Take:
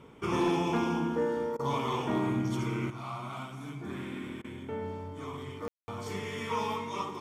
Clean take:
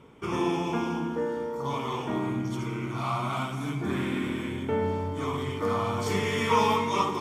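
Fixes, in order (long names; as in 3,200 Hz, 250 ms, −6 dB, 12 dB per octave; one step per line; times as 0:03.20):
clipped peaks rebuilt −21.5 dBFS
ambience match 0:05.68–0:05.88
repair the gap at 0:01.57/0:04.42/0:05.71, 22 ms
level correction +9.5 dB, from 0:02.90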